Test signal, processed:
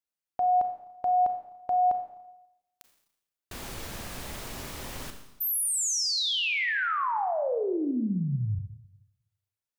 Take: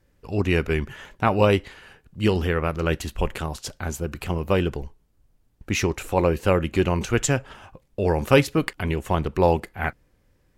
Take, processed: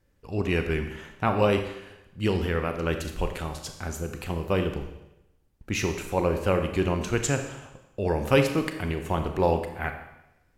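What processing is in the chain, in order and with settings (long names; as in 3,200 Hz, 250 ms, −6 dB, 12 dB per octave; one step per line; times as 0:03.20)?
four-comb reverb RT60 0.92 s, combs from 28 ms, DRR 6 dB
level −4.5 dB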